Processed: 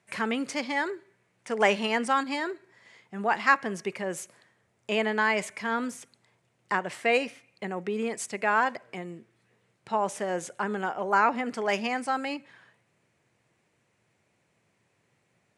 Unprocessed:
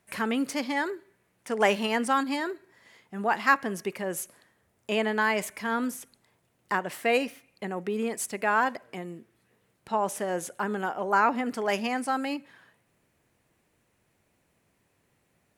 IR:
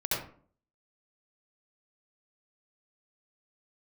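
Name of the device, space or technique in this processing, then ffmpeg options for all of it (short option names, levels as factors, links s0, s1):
car door speaker: -af "highpass=110,equalizer=f=120:t=q:w=4:g=5,equalizer=f=270:t=q:w=4:g=-4,equalizer=f=2200:t=q:w=4:g=3,lowpass=f=8900:w=0.5412,lowpass=f=8900:w=1.3066"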